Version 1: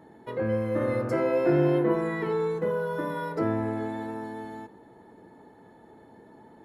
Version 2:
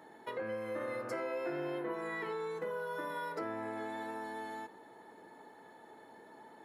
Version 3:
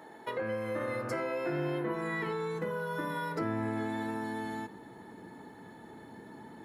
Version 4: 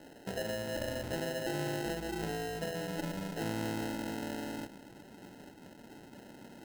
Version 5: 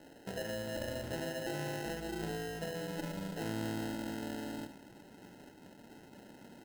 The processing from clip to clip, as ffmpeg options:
-af "highpass=f=980:p=1,acompressor=threshold=-42dB:ratio=3,volume=3.5dB"
-af "asubboost=boost=6.5:cutoff=220,volume=5dB"
-af "acrusher=samples=38:mix=1:aa=0.000001,volume=-2.5dB"
-af "aecho=1:1:73:0.299,volume=-3dB"

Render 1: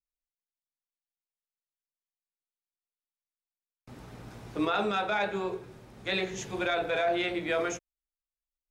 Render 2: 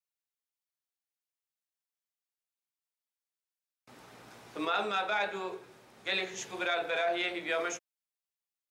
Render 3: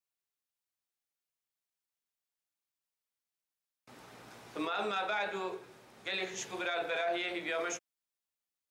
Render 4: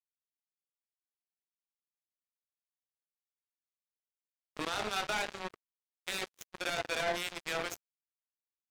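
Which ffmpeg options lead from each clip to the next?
-af "highpass=f=690:p=1"
-af "alimiter=level_in=1.5dB:limit=-24dB:level=0:latency=1:release=34,volume=-1.5dB"
-af "acrusher=bits=4:mix=0:aa=0.5,acompressor=mode=upward:threshold=-36dB:ratio=2.5,agate=range=-23dB:threshold=-47dB:ratio=16:detection=peak"

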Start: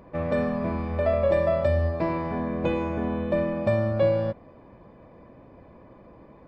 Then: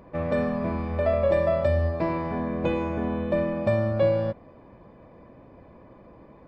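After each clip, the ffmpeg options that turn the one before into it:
-af anull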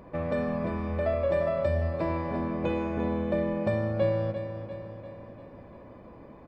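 -filter_complex "[0:a]asplit=2[a][b];[b]acompressor=threshold=-33dB:ratio=6,volume=3dB[c];[a][c]amix=inputs=2:normalize=0,aecho=1:1:346|692|1038|1384|1730|2076:0.316|0.177|0.0992|0.0555|0.0311|0.0174,volume=-7dB"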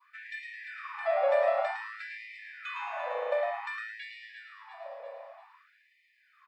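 -filter_complex "[0:a]adynamicequalizer=threshold=0.00562:dfrequency=1800:dqfactor=0.97:tfrequency=1800:tqfactor=0.97:attack=5:release=100:ratio=0.375:range=2:mode=boostabove:tftype=bell,asplit=5[a][b][c][d][e];[b]adelay=108,afreqshift=110,volume=-6dB[f];[c]adelay=216,afreqshift=220,volume=-15.9dB[g];[d]adelay=324,afreqshift=330,volume=-25.8dB[h];[e]adelay=432,afreqshift=440,volume=-35.7dB[i];[a][f][g][h][i]amix=inputs=5:normalize=0,afftfilt=real='re*gte(b*sr/1024,460*pow(1800/460,0.5+0.5*sin(2*PI*0.54*pts/sr)))':imag='im*gte(b*sr/1024,460*pow(1800/460,0.5+0.5*sin(2*PI*0.54*pts/sr)))':win_size=1024:overlap=0.75"

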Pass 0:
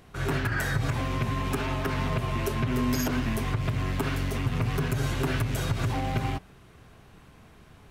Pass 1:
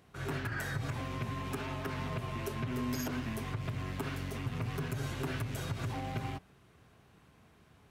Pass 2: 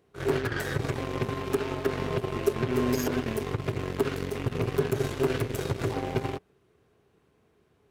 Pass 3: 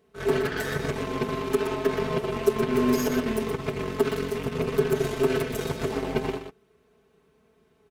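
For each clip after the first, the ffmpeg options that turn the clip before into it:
-af "highpass=65,volume=-8.5dB"
-af "aeval=exprs='0.0668*(cos(1*acos(clip(val(0)/0.0668,-1,1)))-cos(1*PI/2))+0.0075*(cos(7*acos(clip(val(0)/0.0668,-1,1)))-cos(7*PI/2))':c=same,equalizer=f=410:t=o:w=0.72:g=12,volume=6dB"
-filter_complex "[0:a]aecho=1:1:4.6:0.73,asplit=2[a][b];[b]aecho=0:1:122:0.422[c];[a][c]amix=inputs=2:normalize=0"

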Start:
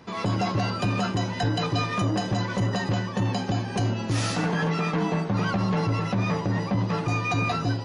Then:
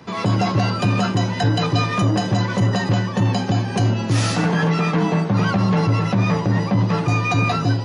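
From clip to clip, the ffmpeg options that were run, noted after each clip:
-filter_complex "[0:a]highpass=110,acrossover=split=140[a][b];[a]acontrast=72[c];[c][b]amix=inputs=2:normalize=0,volume=5.5dB"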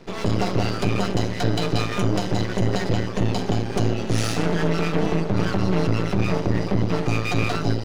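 -af "equalizer=f=400:t=o:w=0.33:g=10,equalizer=f=1k:t=o:w=0.33:g=-10,equalizer=f=1.6k:t=o:w=0.33:g=-3,aeval=exprs='max(val(0),0)':c=same"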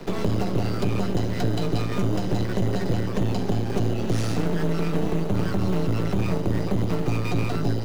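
-filter_complex "[0:a]asplit=2[a][b];[b]acrusher=samples=13:mix=1:aa=0.000001,volume=-7dB[c];[a][c]amix=inputs=2:normalize=0,acrossover=split=100|420[d][e][f];[d]acompressor=threshold=-30dB:ratio=4[g];[e]acompressor=threshold=-31dB:ratio=4[h];[f]acompressor=threshold=-39dB:ratio=4[i];[g][h][i]amix=inputs=3:normalize=0,volume=5dB"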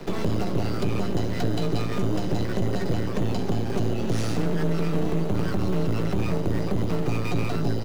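-filter_complex "[0:a]asoftclip=type=tanh:threshold=-14dB,asplit=2[a][b];[b]adelay=13,volume=-13.5dB[c];[a][c]amix=inputs=2:normalize=0"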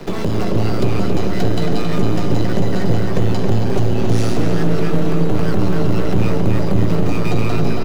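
-filter_complex "[0:a]asplit=2[a][b];[b]adelay=273,lowpass=f=3.4k:p=1,volume=-3dB,asplit=2[c][d];[d]adelay=273,lowpass=f=3.4k:p=1,volume=0.5,asplit=2[e][f];[f]adelay=273,lowpass=f=3.4k:p=1,volume=0.5,asplit=2[g][h];[h]adelay=273,lowpass=f=3.4k:p=1,volume=0.5,asplit=2[i][j];[j]adelay=273,lowpass=f=3.4k:p=1,volume=0.5,asplit=2[k][l];[l]adelay=273,lowpass=f=3.4k:p=1,volume=0.5,asplit=2[m][n];[n]adelay=273,lowpass=f=3.4k:p=1,volume=0.5[o];[a][c][e][g][i][k][m][o]amix=inputs=8:normalize=0,volume=5.5dB"

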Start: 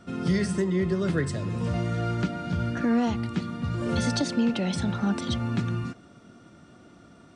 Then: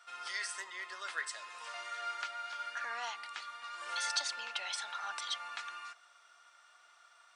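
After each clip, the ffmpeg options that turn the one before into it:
-af "highpass=f=960:w=0.5412,highpass=f=960:w=1.3066,volume=-2dB"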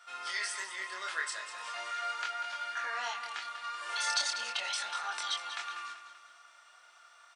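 -filter_complex "[0:a]flanger=delay=22.5:depth=5.2:speed=0.39,asplit=2[a][b];[b]aecho=0:1:193|386|579|772|965:0.282|0.132|0.0623|0.0293|0.0138[c];[a][c]amix=inputs=2:normalize=0,volume=6.5dB"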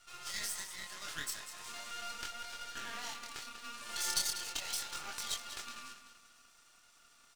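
-af "aeval=exprs='max(val(0),0)':c=same,bass=f=250:g=-3,treble=f=4k:g=10,volume=-4dB"

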